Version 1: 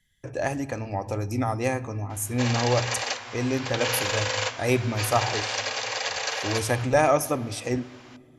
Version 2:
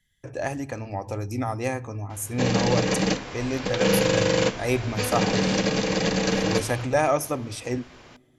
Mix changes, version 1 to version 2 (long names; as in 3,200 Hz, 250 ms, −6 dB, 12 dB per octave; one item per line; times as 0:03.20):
speech: send −8.5 dB
background: remove high-pass filter 670 Hz 24 dB per octave